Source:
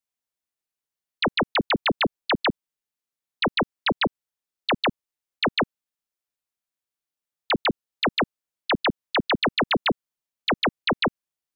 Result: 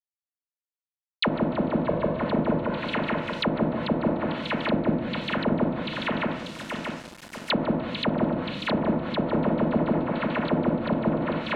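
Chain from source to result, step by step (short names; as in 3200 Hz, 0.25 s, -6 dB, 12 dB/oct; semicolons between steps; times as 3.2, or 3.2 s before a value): notch comb 400 Hz; split-band echo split 2700 Hz, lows 0.632 s, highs 0.295 s, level -5 dB; shoebox room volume 610 m³, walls mixed, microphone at 1.3 m; sample gate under -39.5 dBFS; high shelf 4300 Hz +5.5 dB; treble ducked by the level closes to 690 Hz, closed at -18.5 dBFS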